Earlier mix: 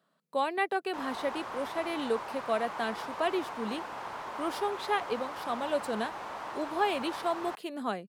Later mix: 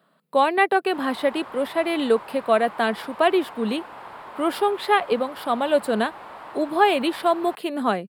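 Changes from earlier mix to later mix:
speech +11.0 dB
master: add parametric band 6,100 Hz −13 dB 0.54 octaves

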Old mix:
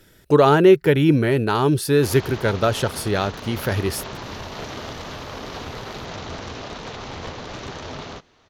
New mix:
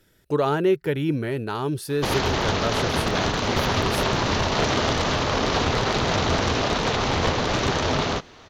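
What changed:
speech −8.0 dB
background +11.0 dB

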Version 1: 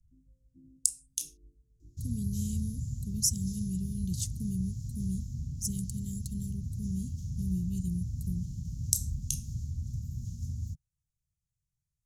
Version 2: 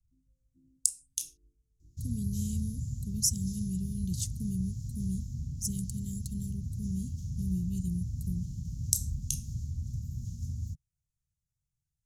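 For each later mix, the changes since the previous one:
first sound −8.5 dB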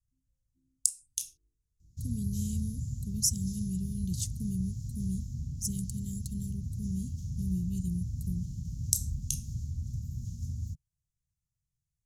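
first sound −11.0 dB

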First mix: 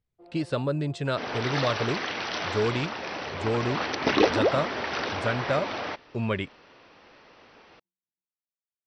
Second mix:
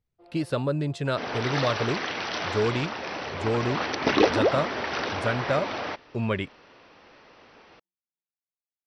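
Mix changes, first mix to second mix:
first sound: add spectral tilt +3 dB per octave
master: remove Chebyshev low-pass filter 8,600 Hz, order 4

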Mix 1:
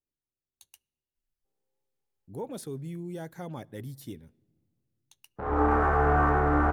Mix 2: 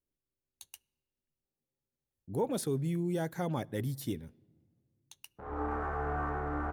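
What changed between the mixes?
speech +5.0 dB
background −11.5 dB

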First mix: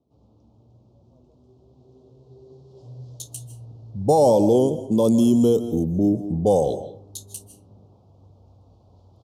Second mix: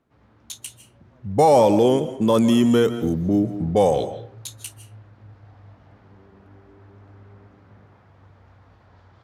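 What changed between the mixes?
speech: entry −2.70 s
master: remove Butterworth band-reject 1,800 Hz, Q 0.5

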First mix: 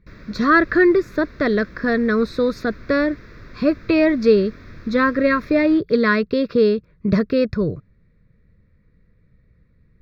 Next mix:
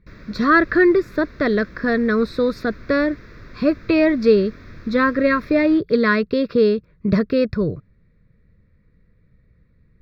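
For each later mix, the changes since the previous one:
speech: add parametric band 6,400 Hz −6.5 dB 0.21 octaves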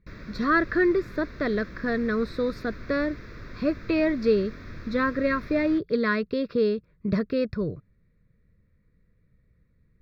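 speech −7.5 dB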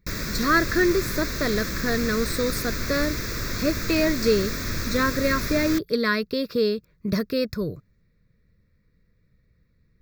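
background +10.5 dB
master: remove high-frequency loss of the air 310 metres

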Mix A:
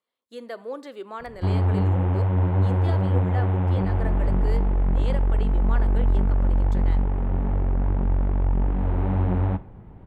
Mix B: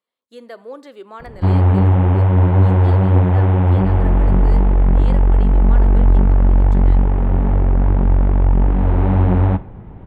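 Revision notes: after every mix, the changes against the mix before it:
background +8.5 dB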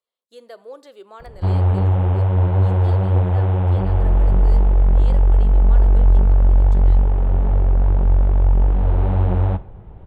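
master: add octave-band graphic EQ 125/250/1,000/2,000 Hz −4/−11/−4/−7 dB

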